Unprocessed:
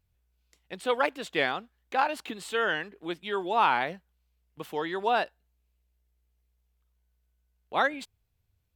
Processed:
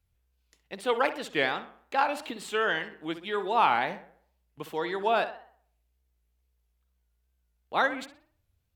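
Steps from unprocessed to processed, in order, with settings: tape echo 62 ms, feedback 49%, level -11 dB, low-pass 3.1 kHz; wow and flutter 90 cents

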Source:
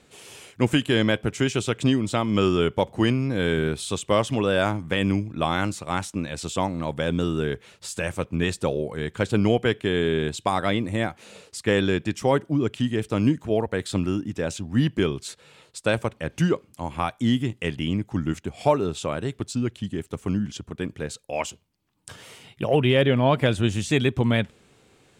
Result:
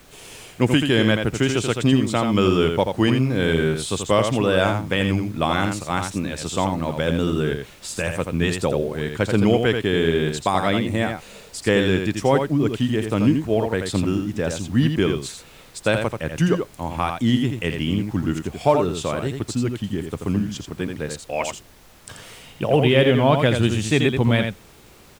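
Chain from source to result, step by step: added noise pink -53 dBFS; on a send: delay 84 ms -6 dB; on the sum: trim +2.5 dB

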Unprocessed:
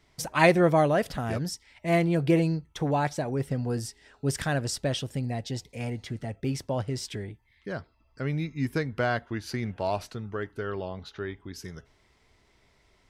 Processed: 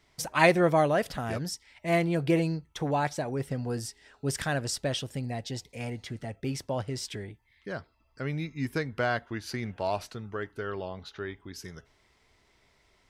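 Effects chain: bass shelf 430 Hz -4 dB

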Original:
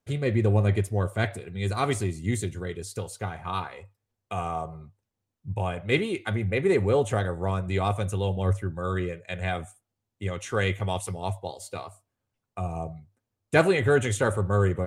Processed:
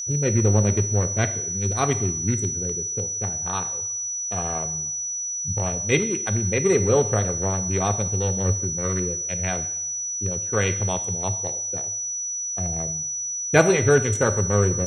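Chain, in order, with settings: local Wiener filter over 41 samples; whistle 5.9 kHz -31 dBFS; two-slope reverb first 0.75 s, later 2.3 s, from -21 dB, DRR 10.5 dB; trim +3.5 dB

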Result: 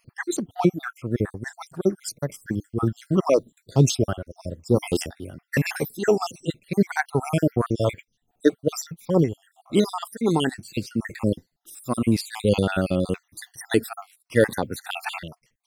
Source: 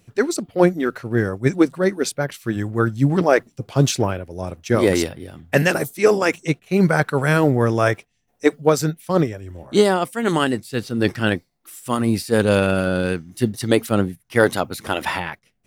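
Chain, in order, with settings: random holes in the spectrogram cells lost 57%; 1.34–2.70 s: peaking EQ 2.7 kHz -12 dB 0.59 oct; Shepard-style phaser falling 0.91 Hz

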